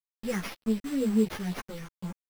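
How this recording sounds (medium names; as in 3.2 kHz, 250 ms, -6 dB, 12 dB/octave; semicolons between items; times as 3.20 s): a quantiser's noise floor 6-bit, dither none; phasing stages 4, 2 Hz, lowest notch 590–3800 Hz; aliases and images of a low sample rate 7.9 kHz, jitter 0%; a shimmering, thickened sound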